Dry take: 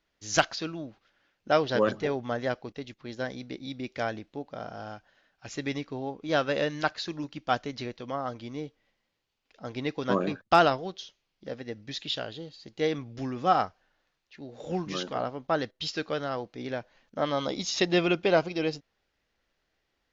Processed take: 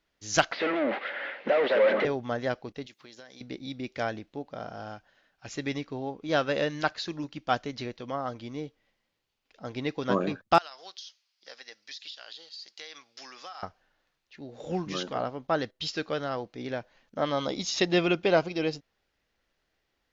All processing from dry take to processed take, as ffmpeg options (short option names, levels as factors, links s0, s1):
-filter_complex "[0:a]asettb=1/sr,asplit=3[s0][s1][s2];[s0]atrim=end=0.524[s3];[s1]atrim=start=0.52:end=2.05,asetpts=PTS-STARTPTS,afade=t=in:d=0.004:c=qsin,afade=t=out:st=1.526:d=0.004:c=qsin,acompressor=threshold=0.00794:ratio=2.5:attack=3.2:release=140:knee=1:detection=peak,asplit=2[s4][s5];[s5]highpass=f=720:p=1,volume=141,asoftclip=type=tanh:threshold=0.119[s6];[s4][s6]amix=inputs=2:normalize=0,lowpass=f=1500:p=1,volume=0.501,highpass=f=230:w=0.5412,highpass=f=230:w=1.3066,equalizer=f=330:t=q:w=4:g=-4,equalizer=f=550:t=q:w=4:g=8,equalizer=f=1100:t=q:w=4:g=-3,equalizer=f=2000:t=q:w=4:g=9,lowpass=f=3700:w=0.5412,lowpass=f=3700:w=1.3066[s7];[s2]atrim=start=2.046[s8];[s3][s7]acrossfade=d=0.004:c1=hsin:c2=qsin[s9];[s9][s8]acrossfade=d=0.004:c1=qsin:c2=hsin,asettb=1/sr,asplit=3[s10][s11][s12];[s10]atrim=end=2.864[s13];[s11]atrim=start=2.86:end=3.41,asetpts=PTS-STARTPTS,afade=t=in:d=0.004:c=qsin,afade=t=out:st=0.546:d=0.004:c=qsin,highpass=f=410:p=1,highshelf=f=3000:g=10,acompressor=threshold=0.00562:ratio=6:attack=3.2:release=140:knee=1:detection=peak[s14];[s12]atrim=start=3.406[s15];[s13][s14]acrossfade=d=0.004:c1=hsin:c2=qsin[s16];[s16][s15]acrossfade=d=0.004:c1=qsin:c2=hsin,asettb=1/sr,asplit=3[s17][s18][s19];[s17]atrim=end=10.584[s20];[s18]atrim=start=10.58:end=13.63,asetpts=PTS-STARTPTS,afade=t=in:d=0.004:c=qsin,afade=t=out:st=3.046:d=0.004:c=qsin,highpass=1100,equalizer=f=5000:t=o:w=0.75:g=11,acompressor=threshold=0.0126:ratio=16:attack=3.2:release=140:knee=1:detection=peak[s21];[s19]atrim=start=13.626[s22];[s20][s21]acrossfade=d=0.004:c1=hsin:c2=qsin[s23];[s23][s22]acrossfade=d=0.004:c1=qsin:c2=hsin"